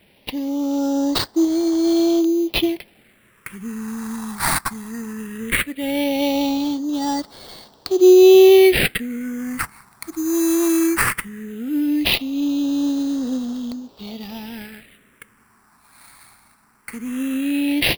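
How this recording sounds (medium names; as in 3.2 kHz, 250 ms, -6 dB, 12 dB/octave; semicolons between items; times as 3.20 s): aliases and images of a low sample rate 6.6 kHz, jitter 0%; phasing stages 4, 0.17 Hz, lowest notch 480–2400 Hz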